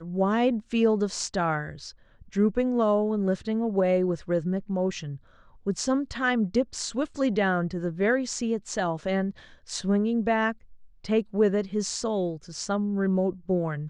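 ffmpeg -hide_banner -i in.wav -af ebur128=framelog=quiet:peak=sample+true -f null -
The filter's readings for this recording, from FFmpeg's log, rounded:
Integrated loudness:
  I:         -26.7 LUFS
  Threshold: -37.0 LUFS
Loudness range:
  LRA:         1.8 LU
  Threshold: -47.1 LUFS
  LRA low:   -27.9 LUFS
  LRA high:  -26.1 LUFS
Sample peak:
  Peak:      -11.6 dBFS
True peak:
  Peak:      -11.6 dBFS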